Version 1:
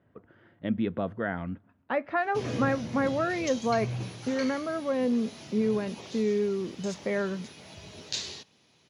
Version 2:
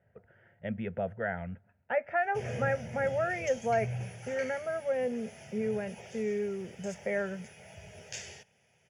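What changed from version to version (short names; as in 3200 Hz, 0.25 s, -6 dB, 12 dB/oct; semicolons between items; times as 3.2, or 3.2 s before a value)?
master: add fixed phaser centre 1100 Hz, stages 6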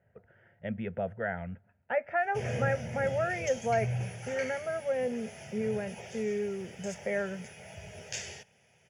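background +3.5 dB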